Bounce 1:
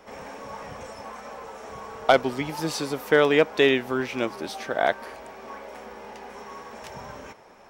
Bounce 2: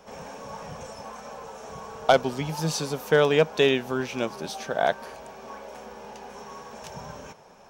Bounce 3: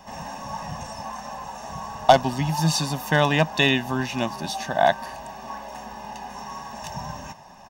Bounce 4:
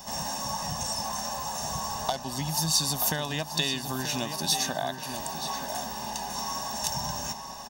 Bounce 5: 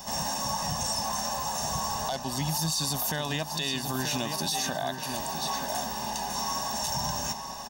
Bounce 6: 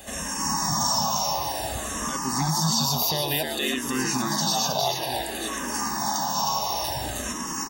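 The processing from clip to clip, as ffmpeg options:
-af "equalizer=f=160:t=o:w=0.33:g=8,equalizer=f=315:t=o:w=0.33:g=-7,equalizer=f=1.25k:t=o:w=0.33:g=-3,equalizer=f=2k:t=o:w=0.33:g=-8,equalizer=f=6.3k:t=o:w=0.33:g=5"
-af "aecho=1:1:1.1:0.83,volume=3dB"
-filter_complex "[0:a]acompressor=threshold=-29dB:ratio=6,aexciter=amount=2.9:drive=7.4:freq=3.5k,asplit=2[a][b];[b]adelay=931,lowpass=f=4.7k:p=1,volume=-8dB,asplit=2[c][d];[d]adelay=931,lowpass=f=4.7k:p=1,volume=0.39,asplit=2[e][f];[f]adelay=931,lowpass=f=4.7k:p=1,volume=0.39,asplit=2[g][h];[h]adelay=931,lowpass=f=4.7k:p=1,volume=0.39[i];[a][c][e][g][i]amix=inputs=5:normalize=0"
-af "alimiter=limit=-22dB:level=0:latency=1:release=13,volume=2dB"
-filter_complex "[0:a]asplit=2[a][b];[b]asplit=4[c][d][e][f];[c]adelay=315,afreqshift=80,volume=-3dB[g];[d]adelay=630,afreqshift=160,volume=-12.9dB[h];[e]adelay=945,afreqshift=240,volume=-22.8dB[i];[f]adelay=1260,afreqshift=320,volume=-32.7dB[j];[g][h][i][j]amix=inputs=4:normalize=0[k];[a][k]amix=inputs=2:normalize=0,asplit=2[l][m];[m]afreqshift=-0.56[n];[l][n]amix=inputs=2:normalize=1,volume=5.5dB"

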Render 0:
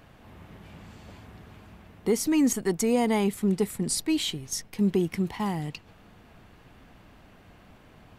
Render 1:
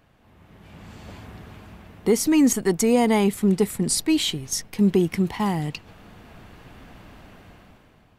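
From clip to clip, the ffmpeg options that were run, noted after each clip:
-af "dynaudnorm=f=180:g=9:m=14dB,volume=-6.5dB"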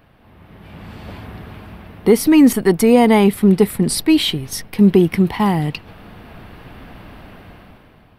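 -af "equalizer=f=6.9k:t=o:w=0.57:g=-15,volume=7.5dB"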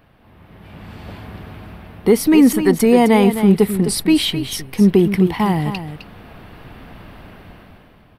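-af "aecho=1:1:259:0.316,volume=-1dB"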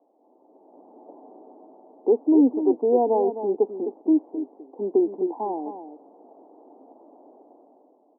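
-af "asuperpass=centerf=490:order=12:qfactor=0.78,volume=-5dB"

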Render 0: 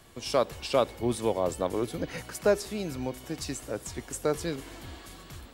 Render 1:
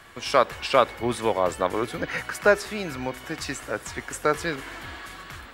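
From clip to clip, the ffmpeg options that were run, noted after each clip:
-af "equalizer=f=1.6k:t=o:w=1.9:g=14"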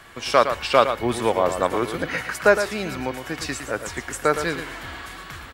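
-af "aecho=1:1:112:0.355,volume=2.5dB"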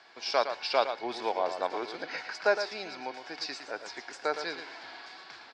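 -af "highpass=500,equalizer=f=530:t=q:w=4:g=-5,equalizer=f=780:t=q:w=4:g=3,equalizer=f=1.2k:t=q:w=4:g=-10,equalizer=f=1.9k:t=q:w=4:g=-6,equalizer=f=3k:t=q:w=4:g=-7,equalizer=f=4.9k:t=q:w=4:g=9,lowpass=f=5.1k:w=0.5412,lowpass=f=5.1k:w=1.3066,volume=-5.5dB"

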